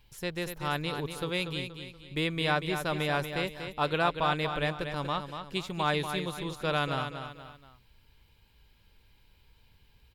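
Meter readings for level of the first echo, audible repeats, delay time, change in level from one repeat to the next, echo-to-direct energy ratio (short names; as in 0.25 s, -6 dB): -8.0 dB, 3, 0.238 s, -8.0 dB, -7.5 dB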